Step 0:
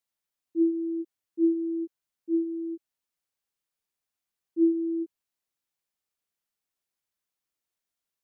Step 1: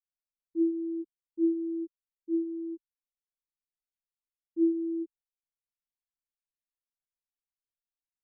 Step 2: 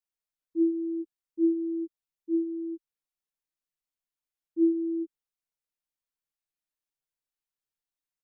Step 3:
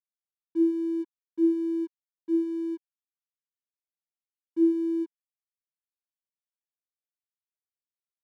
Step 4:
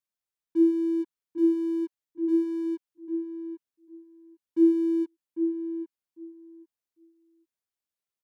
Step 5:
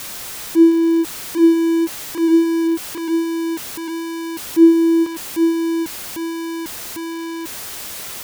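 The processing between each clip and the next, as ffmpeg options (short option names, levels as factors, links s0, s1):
-af "equalizer=f=400:t=o:w=1.3:g=-6.5,anlmdn=0.0251,volume=1.33"
-af "aecho=1:1:6.5:0.39"
-filter_complex "[0:a]asplit=2[s0][s1];[s1]acompressor=threshold=0.0224:ratio=6,volume=0.708[s2];[s0][s2]amix=inputs=2:normalize=0,aeval=exprs='sgn(val(0))*max(abs(val(0))-0.00224,0)':c=same"
-filter_complex "[0:a]asplit=2[s0][s1];[s1]adelay=799,lowpass=f=990:p=1,volume=0.447,asplit=2[s2][s3];[s3]adelay=799,lowpass=f=990:p=1,volume=0.16,asplit=2[s4][s5];[s5]adelay=799,lowpass=f=990:p=1,volume=0.16[s6];[s0][s2][s4][s6]amix=inputs=4:normalize=0,volume=1.33"
-af "aeval=exprs='val(0)+0.5*0.0316*sgn(val(0))':c=same,volume=2.82"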